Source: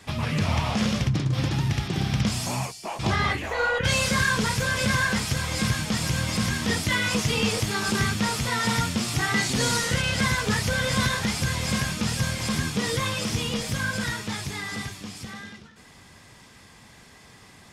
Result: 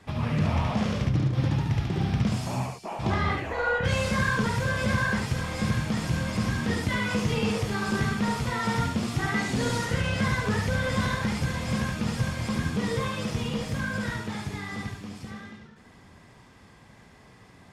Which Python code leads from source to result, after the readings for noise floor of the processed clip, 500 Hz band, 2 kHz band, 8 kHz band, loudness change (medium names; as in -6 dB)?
-53 dBFS, -0.5 dB, -4.0 dB, -10.5 dB, -2.5 dB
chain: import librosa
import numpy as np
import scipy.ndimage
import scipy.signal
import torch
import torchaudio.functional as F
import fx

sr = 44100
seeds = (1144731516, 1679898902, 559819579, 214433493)

y = fx.high_shelf(x, sr, hz=2400.0, db=-12.0)
y = y + 10.0 ** (-3.5 / 20.0) * np.pad(y, (int(72 * sr / 1000.0), 0))[:len(y)]
y = y * librosa.db_to_amplitude(-1.5)